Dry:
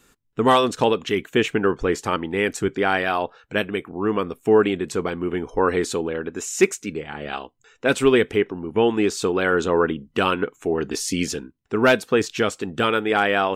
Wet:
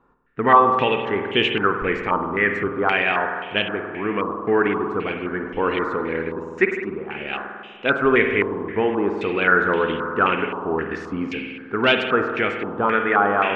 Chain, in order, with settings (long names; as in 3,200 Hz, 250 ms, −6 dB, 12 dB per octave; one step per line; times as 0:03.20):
spring reverb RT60 2.1 s, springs 49 ms, chirp 50 ms, DRR 4 dB
low-pass on a step sequencer 3.8 Hz 990–3,000 Hz
level −3.5 dB